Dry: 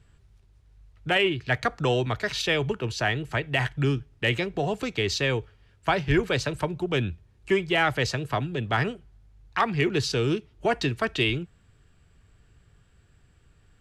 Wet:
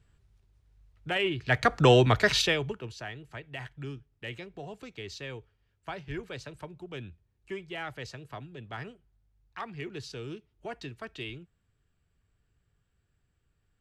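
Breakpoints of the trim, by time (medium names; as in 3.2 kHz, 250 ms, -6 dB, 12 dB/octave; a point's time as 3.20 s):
1.15 s -7 dB
1.83 s +5 dB
2.37 s +5 dB
2.56 s -4.5 dB
3.08 s -15 dB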